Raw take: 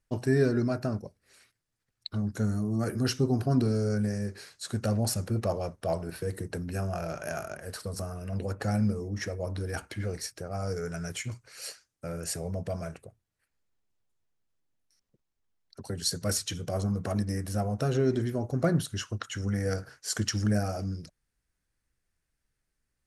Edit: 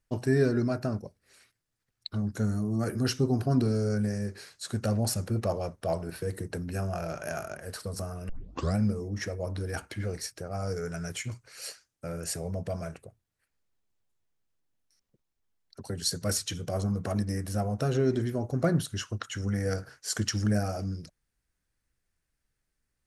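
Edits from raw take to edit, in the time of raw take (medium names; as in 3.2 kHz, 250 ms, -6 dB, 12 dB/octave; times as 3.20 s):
8.29 s: tape start 0.47 s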